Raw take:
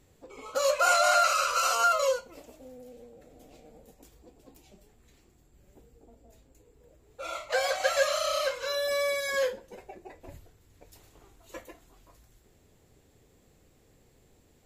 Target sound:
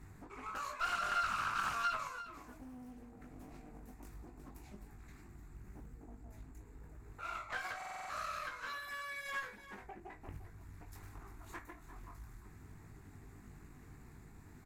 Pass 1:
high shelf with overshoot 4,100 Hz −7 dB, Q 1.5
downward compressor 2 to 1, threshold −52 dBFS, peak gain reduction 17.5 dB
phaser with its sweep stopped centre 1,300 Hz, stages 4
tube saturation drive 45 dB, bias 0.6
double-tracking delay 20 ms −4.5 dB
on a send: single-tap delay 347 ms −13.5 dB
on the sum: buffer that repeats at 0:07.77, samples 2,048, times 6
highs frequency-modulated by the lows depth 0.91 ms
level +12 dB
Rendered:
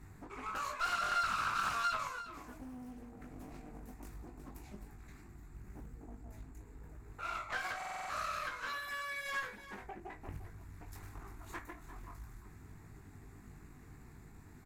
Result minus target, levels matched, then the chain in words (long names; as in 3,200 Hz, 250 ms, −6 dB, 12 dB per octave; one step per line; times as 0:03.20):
downward compressor: peak gain reduction −3 dB
high shelf with overshoot 4,100 Hz −7 dB, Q 1.5
downward compressor 2 to 1, threshold −58.5 dBFS, peak gain reduction 20.5 dB
phaser with its sweep stopped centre 1,300 Hz, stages 4
tube saturation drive 45 dB, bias 0.6
double-tracking delay 20 ms −4.5 dB
on a send: single-tap delay 347 ms −13.5 dB
on the sum: buffer that repeats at 0:07.77, samples 2,048, times 6
highs frequency-modulated by the lows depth 0.91 ms
level +12 dB